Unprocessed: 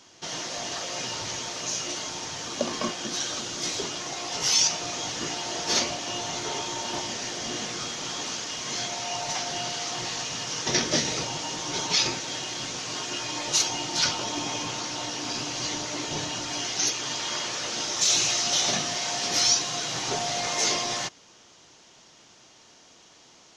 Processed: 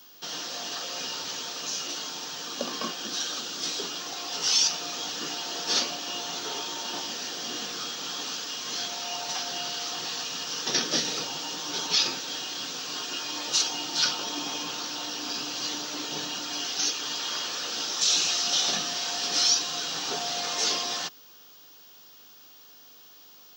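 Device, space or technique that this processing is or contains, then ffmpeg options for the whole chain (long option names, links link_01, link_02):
old television with a line whistle: -af "highpass=frequency=200:width=0.5412,highpass=frequency=200:width=1.3066,equalizer=frequency=230:width_type=q:width=4:gain=-6,equalizer=frequency=360:width_type=q:width=4:gain=-8,equalizer=frequency=620:width_type=q:width=4:gain=-9,equalizer=frequency=950:width_type=q:width=4:gain=-6,equalizer=frequency=2100:width_type=q:width=4:gain=-10,equalizer=frequency=6600:width_type=q:width=4:gain=-6,lowpass=frequency=7900:width=0.5412,lowpass=frequency=7900:width=1.3066,aeval=exprs='val(0)+0.00251*sin(2*PI*15625*n/s)':channel_layout=same,volume=1.5dB"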